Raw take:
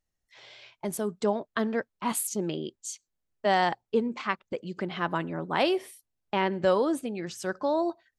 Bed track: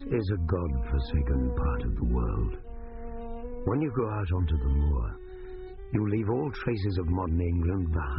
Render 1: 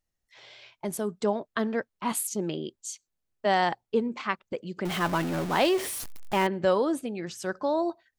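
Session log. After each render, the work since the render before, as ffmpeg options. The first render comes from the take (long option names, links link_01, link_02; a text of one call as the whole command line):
ffmpeg -i in.wav -filter_complex "[0:a]asettb=1/sr,asplit=3[link_01][link_02][link_03];[link_01]atrim=end=4.854[link_04];[link_02]atrim=start=4.85:end=6.47,asetpts=PTS-STARTPTS,afade=type=in:duration=0.004:curve=qsin,afade=type=out:start_time=1.616:duration=0.004:curve=qsin,aeval=exprs='val(0)+0.5*0.0335*sgn(val(0))':channel_layout=same[link_05];[link_03]atrim=start=6.466[link_06];[link_04][link_05]acrossfade=duration=0.004:curve1=hsin:curve2=qsin[link_07];[link_07][link_06]acrossfade=duration=0.004:curve1=qsin:curve2=hsin" out.wav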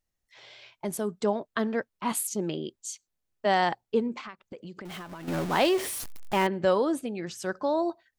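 ffmpeg -i in.wav -filter_complex "[0:a]asettb=1/sr,asplit=3[link_01][link_02][link_03];[link_01]atrim=end=4.194[link_04];[link_02]atrim=start=4.19:end=5.28,asetpts=PTS-STARTPTS,afade=type=in:duration=0.004:curve=qsin,afade=type=out:start_time=1.086:duration=0.004:curve=qsin,acompressor=threshold=-37dB:ratio=12:attack=3.2:release=140:knee=1:detection=peak[link_05];[link_03]atrim=start=5.276[link_06];[link_04][link_05]acrossfade=duration=0.004:curve1=hsin:curve2=qsin[link_07];[link_07][link_06]acrossfade=duration=0.004:curve1=qsin:curve2=hsin" out.wav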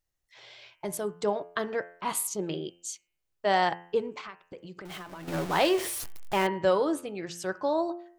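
ffmpeg -i in.wav -af "equalizer=frequency=230:width_type=o:width=0.24:gain=-14,bandreject=frequency=86.68:width_type=h:width=4,bandreject=frequency=173.36:width_type=h:width=4,bandreject=frequency=260.04:width_type=h:width=4,bandreject=frequency=346.72:width_type=h:width=4,bandreject=frequency=433.4:width_type=h:width=4,bandreject=frequency=520.08:width_type=h:width=4,bandreject=frequency=606.76:width_type=h:width=4,bandreject=frequency=693.44:width_type=h:width=4,bandreject=frequency=780.12:width_type=h:width=4,bandreject=frequency=866.8:width_type=h:width=4,bandreject=frequency=953.48:width_type=h:width=4,bandreject=frequency=1040.16:width_type=h:width=4,bandreject=frequency=1126.84:width_type=h:width=4,bandreject=frequency=1213.52:width_type=h:width=4,bandreject=frequency=1300.2:width_type=h:width=4,bandreject=frequency=1386.88:width_type=h:width=4,bandreject=frequency=1473.56:width_type=h:width=4,bandreject=frequency=1560.24:width_type=h:width=4,bandreject=frequency=1646.92:width_type=h:width=4,bandreject=frequency=1733.6:width_type=h:width=4,bandreject=frequency=1820.28:width_type=h:width=4,bandreject=frequency=1906.96:width_type=h:width=4,bandreject=frequency=1993.64:width_type=h:width=4,bandreject=frequency=2080.32:width_type=h:width=4,bandreject=frequency=2167:width_type=h:width=4,bandreject=frequency=2253.68:width_type=h:width=4,bandreject=frequency=2340.36:width_type=h:width=4,bandreject=frequency=2427.04:width_type=h:width=4,bandreject=frequency=2513.72:width_type=h:width=4,bandreject=frequency=2600.4:width_type=h:width=4,bandreject=frequency=2687.08:width_type=h:width=4,bandreject=frequency=2773.76:width_type=h:width=4,bandreject=frequency=2860.44:width_type=h:width=4,bandreject=frequency=2947.12:width_type=h:width=4,bandreject=frequency=3033.8:width_type=h:width=4,bandreject=frequency=3120.48:width_type=h:width=4" out.wav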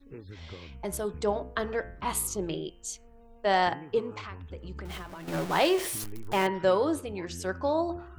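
ffmpeg -i in.wav -i bed.wav -filter_complex "[1:a]volume=-17dB[link_01];[0:a][link_01]amix=inputs=2:normalize=0" out.wav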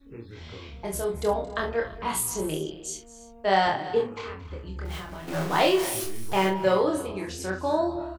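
ffmpeg -i in.wav -filter_complex "[0:a]asplit=2[link_01][link_02];[link_02]adelay=26,volume=-2dB[link_03];[link_01][link_03]amix=inputs=2:normalize=0,aecho=1:1:43|224|279|335:0.398|0.133|0.119|0.106" out.wav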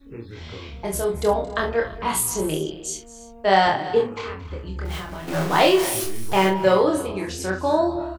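ffmpeg -i in.wav -af "volume=5dB" out.wav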